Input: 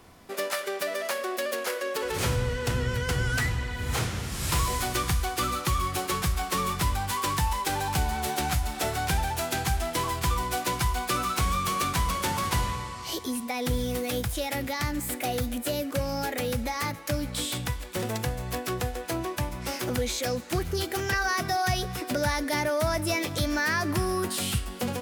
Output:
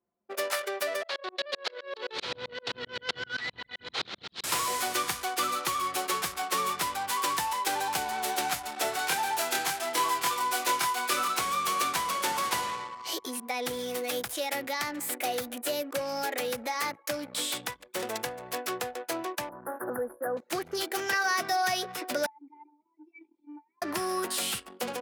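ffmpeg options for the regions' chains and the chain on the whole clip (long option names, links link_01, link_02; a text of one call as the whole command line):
ffmpeg -i in.wav -filter_complex "[0:a]asettb=1/sr,asplit=3[link_01][link_02][link_03];[link_01]atrim=end=1.034[link_04];[link_02]atrim=start=1.03:end=4.44,asetpts=PTS-STARTPTS,afade=type=in:duration=0.004:curve=qsin,afade=type=out:start_time=3.406:duration=0.004:curve=qsin,lowpass=frequency=4000:width_type=q:width=3.6,aeval=exprs='val(0)*pow(10,-18*if(lt(mod(-7.7*n/s,1),2*abs(-7.7)/1000),1-mod(-7.7*n/s,1)/(2*abs(-7.7)/1000),(mod(-7.7*n/s,1)-2*abs(-7.7)/1000)/(1-2*abs(-7.7)/1000))/20)':channel_layout=same[link_05];[link_03]atrim=start=4.436[link_06];[link_04][link_05]acrossfade=duration=0.004:curve1=hsin:curve2=qsin[link_07];[link_07][link_06]acrossfade=duration=0.004:curve1=qsin:curve2=hsin,asettb=1/sr,asplit=3[link_08][link_09][link_10];[link_08]atrim=end=8.964[link_11];[link_09]atrim=start=8.96:end=11.28,asetpts=PTS-STARTPTS,afade=type=in:duration=0.004:curve=qsin,afade=type=out:start_time=2.316:duration=0.004:curve=qsin,highpass=frequency=230:poles=1,asplit=2[link_12][link_13];[link_13]adelay=25,volume=-3dB[link_14];[link_12][link_14]amix=inputs=2:normalize=0,atrim=end_sample=102312[link_15];[link_10]atrim=start=11.276[link_16];[link_11][link_15]acrossfade=duration=0.004:curve1=hsin:curve2=qsin[link_17];[link_17][link_16]acrossfade=duration=0.004:curve1=qsin:curve2=hsin,asettb=1/sr,asplit=3[link_18][link_19][link_20];[link_18]atrim=end=19.494[link_21];[link_19]atrim=start=19.49:end=20.37,asetpts=PTS-STARTPTS,afade=type=in:duration=0.004:curve=qsin,afade=type=out:start_time=0.876:duration=0.004:curve=qsin,acrossover=split=10000[link_22][link_23];[link_23]acompressor=threshold=-49dB:ratio=4:attack=1:release=60[link_24];[link_22][link_24]amix=inputs=2:normalize=0,asuperstop=centerf=4400:order=20:qfactor=0.54,highshelf=frequency=5800:gain=4.5[link_25];[link_20]atrim=start=20.366[link_26];[link_21][link_25]acrossfade=duration=0.004:curve1=hsin:curve2=qsin[link_27];[link_27][link_26]acrossfade=duration=0.004:curve1=qsin:curve2=hsin,asettb=1/sr,asplit=3[link_28][link_29][link_30];[link_28]atrim=end=22.264[link_31];[link_29]atrim=start=22.26:end=23.82,asetpts=PTS-STARTPTS,afade=type=in:duration=0.004:curve=qsin,afade=type=out:start_time=1.556:duration=0.004:curve=qsin,bass=frequency=250:gain=-14,treble=frequency=4000:gain=12,acompressor=threshold=-29dB:ratio=3:attack=3.2:release=140:knee=1:detection=peak,asplit=3[link_32][link_33][link_34];[link_32]bandpass=frequency=300:width_type=q:width=8,volume=0dB[link_35];[link_33]bandpass=frequency=870:width_type=q:width=8,volume=-6dB[link_36];[link_34]bandpass=frequency=2240:width_type=q:width=8,volume=-9dB[link_37];[link_35][link_36][link_37]amix=inputs=3:normalize=0[link_38];[link_30]atrim=start=23.816[link_39];[link_31][link_38]acrossfade=duration=0.004:curve1=hsin:curve2=qsin[link_40];[link_40][link_39]acrossfade=duration=0.004:curve1=qsin:curve2=hsin,anlmdn=1.58,highpass=390" out.wav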